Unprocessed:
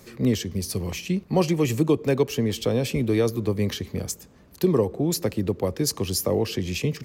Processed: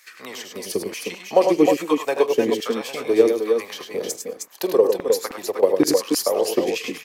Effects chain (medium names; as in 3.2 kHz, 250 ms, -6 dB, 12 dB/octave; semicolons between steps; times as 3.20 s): transient shaper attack +6 dB, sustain -3 dB; LFO high-pass saw down 1.2 Hz 300–1900 Hz; multi-tap echo 46/81/102/309/313/800 ms -19/-12/-6/-9.5/-6.5/-20 dB; trim -1 dB